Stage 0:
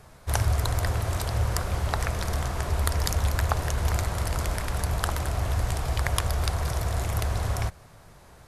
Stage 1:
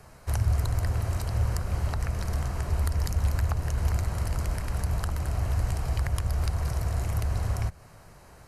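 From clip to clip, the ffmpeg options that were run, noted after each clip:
ffmpeg -i in.wav -filter_complex "[0:a]bandreject=frequency=3500:width=6.3,acrossover=split=260[link_01][link_02];[link_02]acompressor=threshold=-42dB:ratio=2[link_03];[link_01][link_03]amix=inputs=2:normalize=0" out.wav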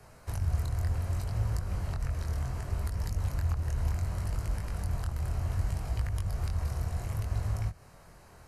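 ffmpeg -i in.wav -filter_complex "[0:a]acrossover=split=190[link_01][link_02];[link_02]acompressor=threshold=-41dB:ratio=2.5[link_03];[link_01][link_03]amix=inputs=2:normalize=0,flanger=delay=19.5:depth=4.7:speed=0.67" out.wav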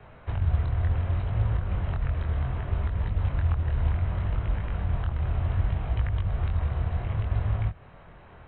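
ffmpeg -i in.wav -af "volume=5dB" -ar 8000 -c:a pcm_mulaw out.wav

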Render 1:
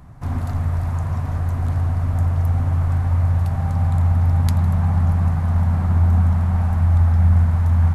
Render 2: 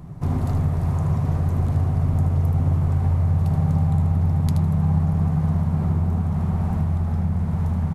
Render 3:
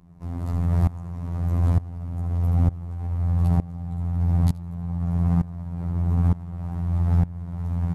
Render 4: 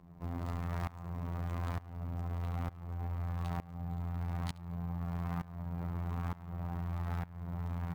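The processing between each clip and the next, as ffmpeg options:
ffmpeg -i in.wav -af "equalizer=frequency=160:width_type=o:width=0.67:gain=10,equalizer=frequency=400:width_type=o:width=0.67:gain=9,equalizer=frequency=1600:width_type=o:width=0.67:gain=-5,acompressor=threshold=-17dB:ratio=4,aecho=1:1:77:0.422" out.wav
ffmpeg -i in.wav -af "alimiter=limit=-15.5dB:level=0:latency=1:release=57,afftfilt=real='hypot(re,im)*cos(PI*b)':imag='0':win_size=2048:overlap=0.75,aeval=exprs='val(0)*pow(10,-20*if(lt(mod(-1.1*n/s,1),2*abs(-1.1)/1000),1-mod(-1.1*n/s,1)/(2*abs(-1.1)/1000),(mod(-1.1*n/s,1)-2*abs(-1.1)/1000)/(1-2*abs(-1.1)/1000))/20)':channel_layout=same,volume=7dB" out.wav
ffmpeg -i in.wav -filter_complex "[0:a]acrossover=split=1000[link_01][link_02];[link_01]acompressor=threshold=-29dB:ratio=6[link_03];[link_03][link_02]amix=inputs=2:normalize=0,acrusher=samples=3:mix=1:aa=0.000001,bass=frequency=250:gain=-6,treble=frequency=4000:gain=-7" out.wav

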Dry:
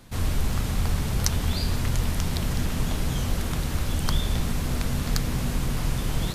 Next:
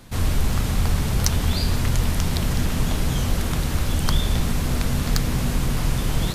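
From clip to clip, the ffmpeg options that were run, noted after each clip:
ffmpeg -i in.wav -af "acontrast=28,volume=-1dB" out.wav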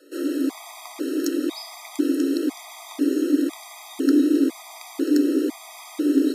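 ffmpeg -i in.wav -af "afreqshift=260,asubboost=boost=8.5:cutoff=220,afftfilt=real='re*gt(sin(2*PI*1*pts/sr)*(1-2*mod(floor(b*sr/1024/640),2)),0)':imag='im*gt(sin(2*PI*1*pts/sr)*(1-2*mod(floor(b*sr/1024/640),2)),0)':win_size=1024:overlap=0.75,volume=-5dB" out.wav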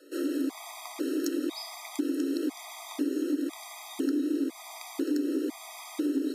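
ffmpeg -i in.wav -af "acompressor=threshold=-24dB:ratio=4,volume=-2.5dB" out.wav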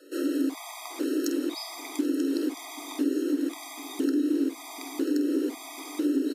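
ffmpeg -i in.wav -filter_complex "[0:a]asplit=2[link_01][link_02];[link_02]adelay=48,volume=-11dB[link_03];[link_01][link_03]amix=inputs=2:normalize=0,asplit=2[link_04][link_05];[link_05]adelay=785,lowpass=frequency=4700:poles=1,volume=-18dB,asplit=2[link_06][link_07];[link_07]adelay=785,lowpass=frequency=4700:poles=1,volume=0.27[link_08];[link_04][link_06][link_08]amix=inputs=3:normalize=0,volume=2dB" out.wav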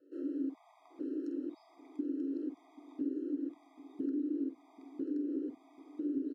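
ffmpeg -i in.wav -af "bandpass=frequency=120:width_type=q:width=1.4:csg=0" out.wav

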